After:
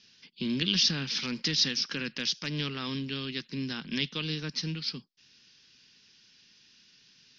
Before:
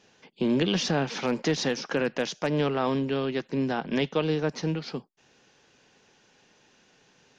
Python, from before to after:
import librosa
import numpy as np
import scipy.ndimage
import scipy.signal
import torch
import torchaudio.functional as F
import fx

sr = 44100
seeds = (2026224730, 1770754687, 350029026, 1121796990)

y = fx.curve_eq(x, sr, hz=(230.0, 720.0, 1100.0, 5200.0, 7800.0), db=(0, -19, -6, 15, -10))
y = F.gain(torch.from_numpy(y), -4.5).numpy()